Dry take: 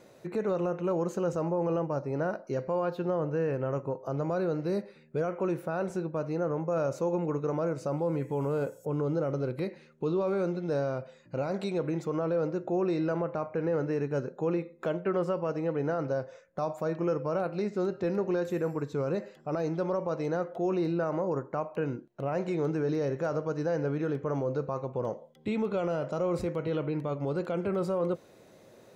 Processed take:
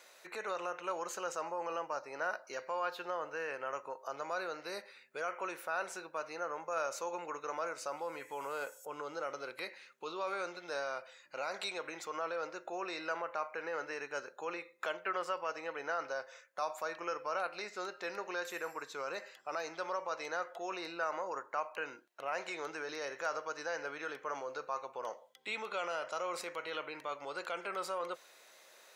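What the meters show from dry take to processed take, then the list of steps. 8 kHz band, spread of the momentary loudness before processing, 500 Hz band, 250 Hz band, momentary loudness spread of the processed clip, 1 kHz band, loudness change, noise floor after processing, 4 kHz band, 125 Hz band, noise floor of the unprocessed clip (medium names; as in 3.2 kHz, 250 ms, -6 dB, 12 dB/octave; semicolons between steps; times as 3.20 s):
no reading, 5 LU, -11.0 dB, -20.0 dB, 6 LU, -1.0 dB, -8.5 dB, -61 dBFS, +5.5 dB, -31.0 dB, -57 dBFS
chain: high-pass 1.3 kHz 12 dB/octave; trim +5.5 dB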